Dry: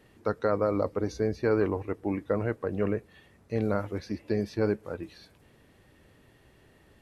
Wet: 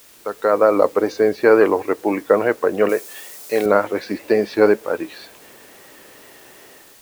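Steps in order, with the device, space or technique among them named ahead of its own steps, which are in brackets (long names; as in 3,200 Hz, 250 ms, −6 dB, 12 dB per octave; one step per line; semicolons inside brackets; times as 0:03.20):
dictaphone (band-pass filter 390–3,800 Hz; automatic gain control gain up to 15.5 dB; tape wow and flutter; white noise bed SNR 29 dB)
0:02.89–0:03.66: bass and treble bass −10 dB, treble +11 dB
level +1.5 dB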